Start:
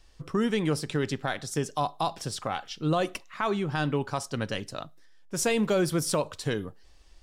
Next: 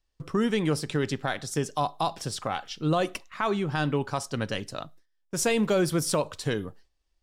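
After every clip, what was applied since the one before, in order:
noise gate with hold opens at −40 dBFS
level +1 dB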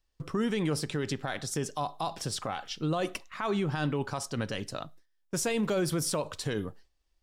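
brickwall limiter −21.5 dBFS, peak gain reduction 6.5 dB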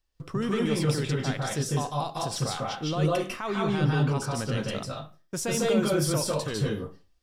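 convolution reverb RT60 0.30 s, pre-delay 145 ms, DRR −2.5 dB
level −1 dB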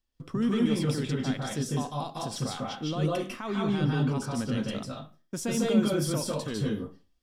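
hollow resonant body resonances 240/3,300 Hz, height 10 dB, ringing for 40 ms
level −4.5 dB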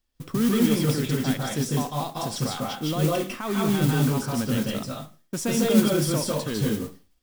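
noise that follows the level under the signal 15 dB
level +4.5 dB

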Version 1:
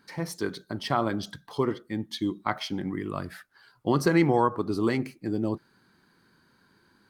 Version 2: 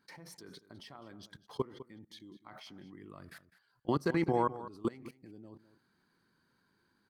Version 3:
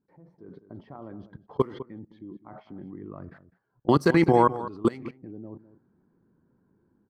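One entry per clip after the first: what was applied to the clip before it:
output level in coarse steps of 23 dB; slap from a distant wall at 35 metres, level −15 dB; level −5.5 dB
automatic gain control gain up to 11 dB; low-pass that shuts in the quiet parts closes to 490 Hz, open at −20 dBFS

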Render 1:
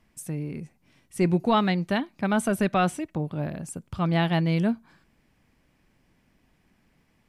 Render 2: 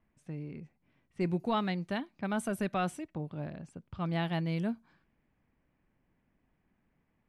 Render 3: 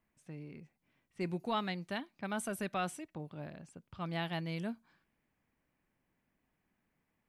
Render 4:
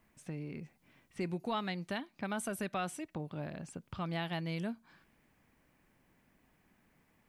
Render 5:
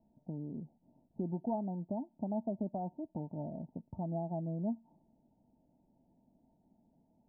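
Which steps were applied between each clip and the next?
low-pass that shuts in the quiet parts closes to 2,000 Hz, open at −22 dBFS; level −9 dB
spectral tilt +1.5 dB per octave; level −3 dB
downward compressor 2 to 1, threshold −53 dBFS, peak gain reduction 12.5 dB; level +10.5 dB
Chebyshev low-pass with heavy ripple 930 Hz, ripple 9 dB; level +4.5 dB

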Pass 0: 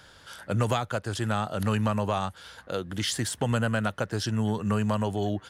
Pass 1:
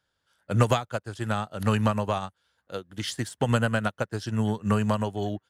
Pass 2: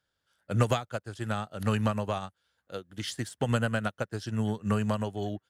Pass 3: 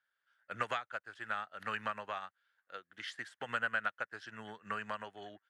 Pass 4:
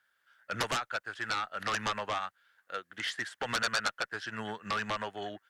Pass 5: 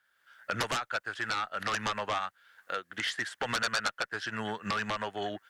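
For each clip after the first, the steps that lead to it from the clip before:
expander for the loud parts 2.5 to 1, over −43 dBFS; level +6.5 dB
parametric band 960 Hz −3.5 dB 0.39 octaves; level −3.5 dB
resonant band-pass 1,700 Hz, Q 2; level +2 dB
harmonic generator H 3 −14 dB, 7 −7 dB, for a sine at −19.5 dBFS; level +1.5 dB
camcorder AGC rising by 22 dB per second

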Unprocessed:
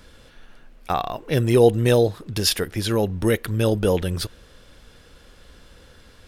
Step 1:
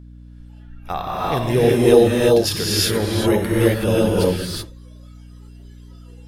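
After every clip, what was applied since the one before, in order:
reverb whose tail is shaped and stops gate 400 ms rising, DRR −6.5 dB
noise reduction from a noise print of the clip's start 16 dB
mains hum 60 Hz, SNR 21 dB
level −3.5 dB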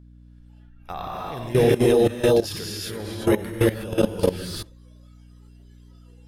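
output level in coarse steps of 16 dB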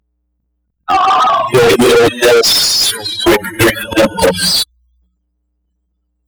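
spectral dynamics exaggerated over time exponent 3
transient designer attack +8 dB, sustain +12 dB
mid-hump overdrive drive 39 dB, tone 6,300 Hz, clips at −4.5 dBFS
level +3.5 dB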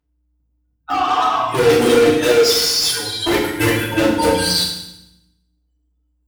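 in parallel at −1 dB: brickwall limiter −11.5 dBFS, peak gain reduction 10 dB
on the sum: feedback delay network reverb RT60 0.83 s, low-frequency decay 1.45×, high-frequency decay 1×, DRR −6 dB
level −16.5 dB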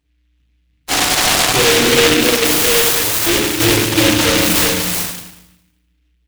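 soft clipping −14.5 dBFS, distortion −10 dB
single-tap delay 378 ms −3.5 dB
short delay modulated by noise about 2,500 Hz, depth 0.28 ms
level +5 dB

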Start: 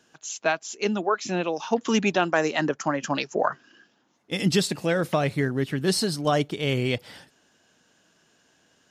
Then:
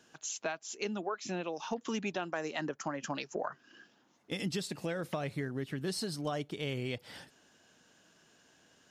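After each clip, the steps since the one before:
downward compressor 3 to 1, threshold −35 dBFS, peak gain reduction 14 dB
level −1.5 dB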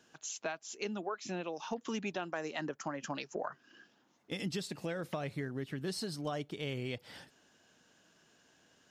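parametric band 10,000 Hz −2.5 dB 0.77 octaves
level −2 dB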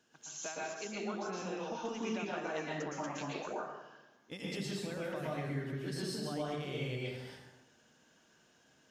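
dense smooth reverb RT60 1 s, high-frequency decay 0.7×, pre-delay 105 ms, DRR −5.5 dB
level −6.5 dB

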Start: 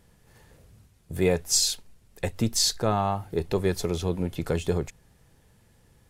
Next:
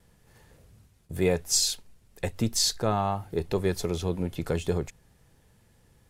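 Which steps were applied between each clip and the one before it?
noise gate with hold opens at −52 dBFS
level −1.5 dB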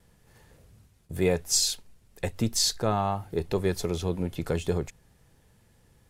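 no processing that can be heard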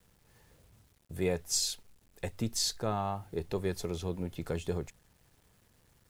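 bit reduction 10 bits
level −6.5 dB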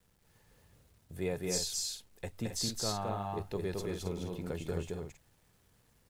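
loudspeakers that aren't time-aligned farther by 75 metres −2 dB, 92 metres −8 dB
level −4.5 dB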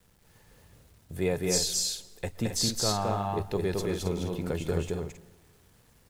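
convolution reverb RT60 1.3 s, pre-delay 112 ms, DRR 19.5 dB
level +7 dB

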